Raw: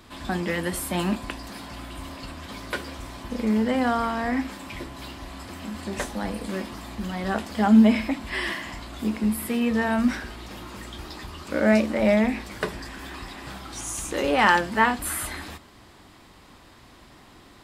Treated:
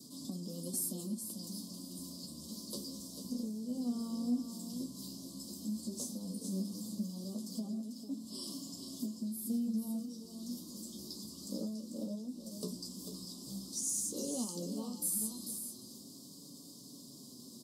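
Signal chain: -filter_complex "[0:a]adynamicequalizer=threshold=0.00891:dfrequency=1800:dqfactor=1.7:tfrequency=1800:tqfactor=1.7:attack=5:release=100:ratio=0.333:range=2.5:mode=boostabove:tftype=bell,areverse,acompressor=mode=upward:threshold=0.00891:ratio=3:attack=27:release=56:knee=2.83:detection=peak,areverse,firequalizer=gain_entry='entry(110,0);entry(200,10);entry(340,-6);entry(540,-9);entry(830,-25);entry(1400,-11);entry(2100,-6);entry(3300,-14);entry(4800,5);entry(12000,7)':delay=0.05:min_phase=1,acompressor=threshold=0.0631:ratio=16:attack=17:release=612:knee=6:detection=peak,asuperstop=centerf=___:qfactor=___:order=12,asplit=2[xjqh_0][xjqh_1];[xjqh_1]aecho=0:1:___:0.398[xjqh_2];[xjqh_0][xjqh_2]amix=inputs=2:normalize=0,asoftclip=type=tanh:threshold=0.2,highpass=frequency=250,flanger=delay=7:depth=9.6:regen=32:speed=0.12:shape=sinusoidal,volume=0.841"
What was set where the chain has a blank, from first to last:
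1900, 0.9, 444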